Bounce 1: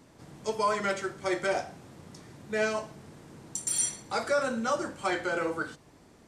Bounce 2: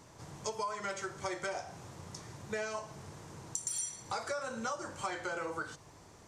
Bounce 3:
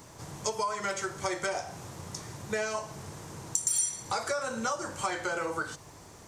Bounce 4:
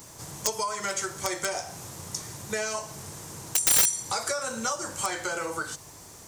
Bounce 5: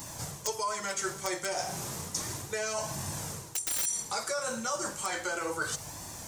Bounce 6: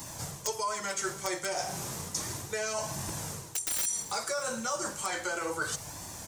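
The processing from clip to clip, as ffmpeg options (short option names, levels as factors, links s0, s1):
-af "equalizer=f=100:t=o:w=0.67:g=5,equalizer=f=250:t=o:w=0.67:g=-7,equalizer=f=1000:t=o:w=0.67:g=5,equalizer=f=6300:t=o:w=0.67:g=7,acompressor=threshold=0.02:ratio=10"
-af "highshelf=f=11000:g=11.5,volume=1.88"
-af "crystalizer=i=2:c=0,aeval=exprs='(mod(5.01*val(0)+1,2)-1)/5.01':c=same"
-af "areverse,acompressor=threshold=0.0178:ratio=6,areverse,flanger=delay=1.1:depth=4.5:regen=-45:speed=0.33:shape=sinusoidal,volume=2.66"
-filter_complex "[0:a]acrossover=split=200|1600[s0][s1][s2];[s0]aeval=exprs='(mod(47.3*val(0)+1,2)-1)/47.3':c=same[s3];[s2]aecho=1:1:305|610|915|1220:0.0794|0.0445|0.0249|0.0139[s4];[s3][s1][s4]amix=inputs=3:normalize=0"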